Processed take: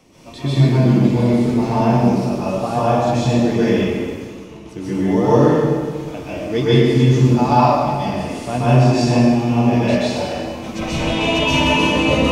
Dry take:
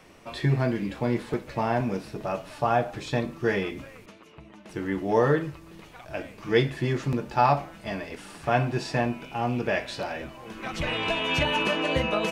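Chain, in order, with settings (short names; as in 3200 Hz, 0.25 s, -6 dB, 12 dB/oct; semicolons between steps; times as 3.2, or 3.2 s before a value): fifteen-band EQ 100 Hz +4 dB, 250 Hz +7 dB, 1600 Hz -10 dB, 6300 Hz +5 dB; plate-style reverb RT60 1.7 s, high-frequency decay 0.85×, pre-delay 0.115 s, DRR -10 dB; gain -1 dB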